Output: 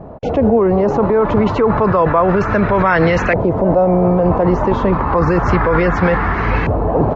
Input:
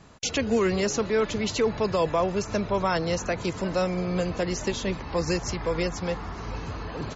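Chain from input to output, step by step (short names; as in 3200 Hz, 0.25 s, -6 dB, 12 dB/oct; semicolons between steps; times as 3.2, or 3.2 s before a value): LFO low-pass saw up 0.3 Hz 640–2100 Hz; in parallel at +3 dB: negative-ratio compressor -28 dBFS, ratio -0.5; on the sum: gain +7 dB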